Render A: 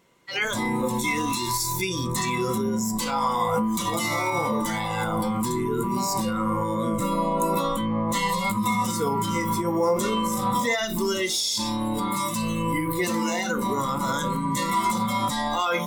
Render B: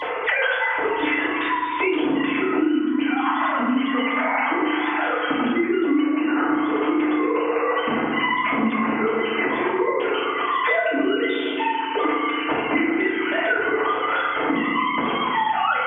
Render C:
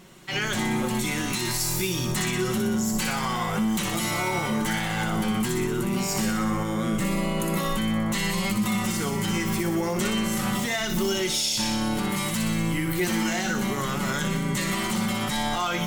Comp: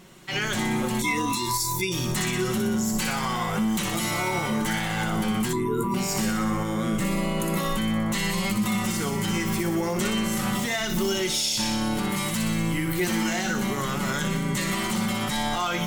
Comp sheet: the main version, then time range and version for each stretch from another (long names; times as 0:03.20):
C
0:01.02–0:01.92: punch in from A
0:05.53–0:05.94: punch in from A
not used: B